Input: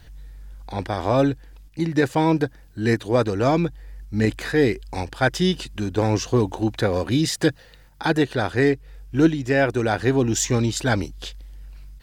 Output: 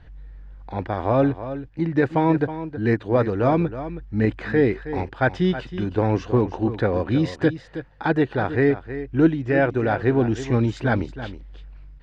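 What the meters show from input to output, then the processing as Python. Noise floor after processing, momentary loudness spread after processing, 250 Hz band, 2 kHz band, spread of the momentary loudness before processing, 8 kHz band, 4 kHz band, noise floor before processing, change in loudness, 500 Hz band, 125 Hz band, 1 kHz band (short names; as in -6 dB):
-45 dBFS, 9 LU, +0.5 dB, -1.5 dB, 9 LU, under -20 dB, -10.0 dB, -49 dBFS, -0.5 dB, 0.0 dB, +0.5 dB, 0.0 dB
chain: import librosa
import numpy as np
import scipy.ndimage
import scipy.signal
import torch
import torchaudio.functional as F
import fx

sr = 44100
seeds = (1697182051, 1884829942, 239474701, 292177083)

y = scipy.signal.sosfilt(scipy.signal.butter(2, 2100.0, 'lowpass', fs=sr, output='sos'), x)
y = y + 10.0 ** (-12.0 / 20.0) * np.pad(y, (int(320 * sr / 1000.0), 0))[:len(y)]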